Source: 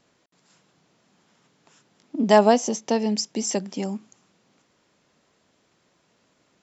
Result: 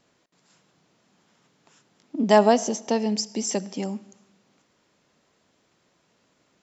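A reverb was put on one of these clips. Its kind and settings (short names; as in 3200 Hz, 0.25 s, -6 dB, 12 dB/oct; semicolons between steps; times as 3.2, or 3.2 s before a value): digital reverb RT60 0.95 s, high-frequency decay 0.9×, pre-delay 30 ms, DRR 19.5 dB; gain -1 dB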